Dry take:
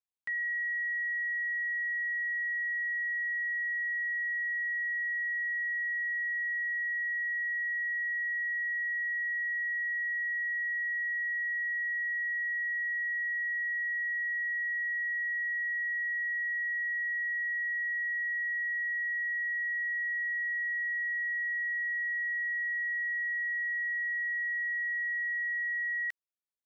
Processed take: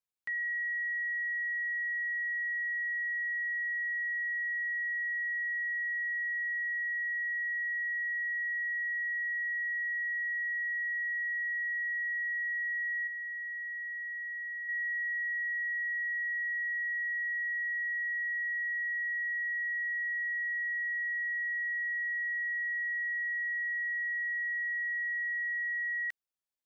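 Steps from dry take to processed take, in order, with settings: 13.07–14.69 bell 1800 Hz -5.5 dB; gain -1 dB

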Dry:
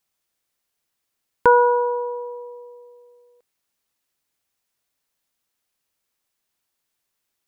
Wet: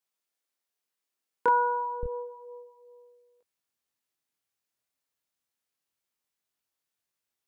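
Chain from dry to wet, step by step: HPF 220 Hz 12 dB/oct, from 2.03 s 49 Hz; chorus 0.3 Hz, delay 20 ms, depth 6 ms; gain -5.5 dB

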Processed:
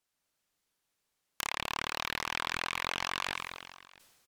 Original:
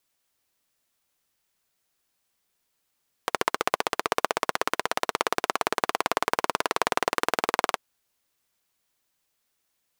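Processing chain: tape spacing loss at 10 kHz 22 dB; wavefolder -23.5 dBFS; AGC gain up to 3 dB; treble ducked by the level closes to 1700 Hz, closed at -31.5 dBFS; speed mistake 33 rpm record played at 78 rpm; high shelf 6300 Hz +8 dB; echo 0.669 s -23 dB; sustainer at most 39 dB/s; gain -2 dB

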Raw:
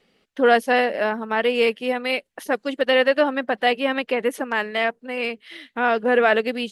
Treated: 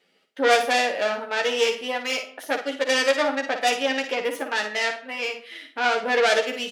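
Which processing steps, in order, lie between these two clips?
self-modulated delay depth 0.19 ms; HPF 490 Hz 6 dB/oct; notch 1100 Hz, Q 11; early reflections 11 ms -3.5 dB, 57 ms -8 dB; reverb RT60 0.60 s, pre-delay 10 ms, DRR 10.5 dB; gain -2 dB

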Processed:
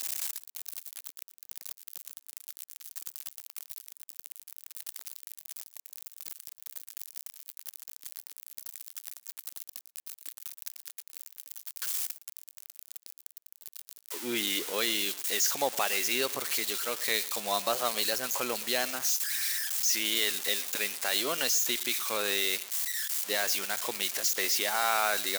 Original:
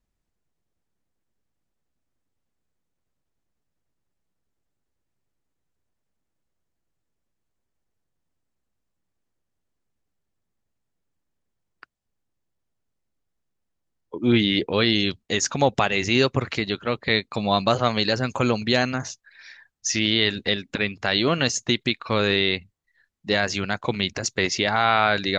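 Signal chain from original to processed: switching spikes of -13 dBFS; HPF 430 Hz 12 dB/oct; echo 0.115 s -20.5 dB; gain -8.5 dB

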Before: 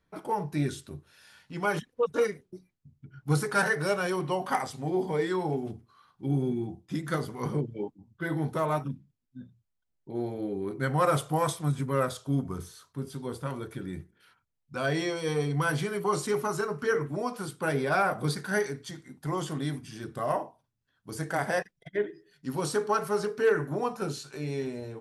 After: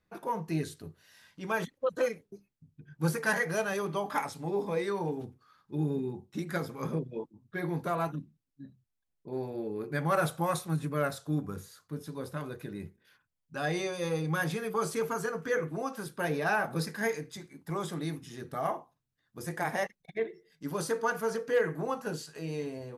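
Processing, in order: speed mistake 44.1 kHz file played as 48 kHz; gain -3 dB

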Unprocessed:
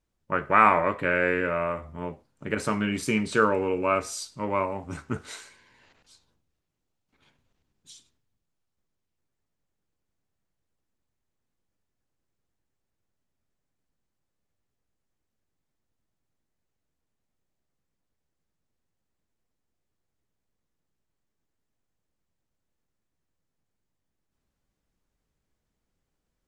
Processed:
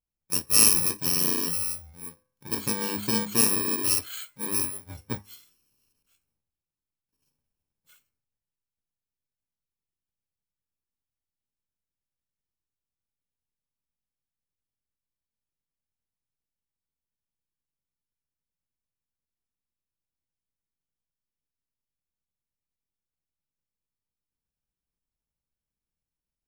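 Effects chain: FFT order left unsorted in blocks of 64 samples; de-hum 102.4 Hz, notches 23; spectral noise reduction 12 dB

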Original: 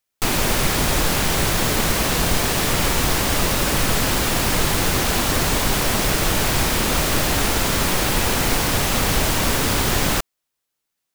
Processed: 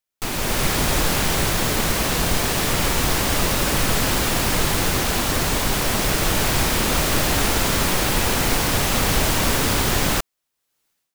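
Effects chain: AGC gain up to 16.5 dB; gain -6.5 dB

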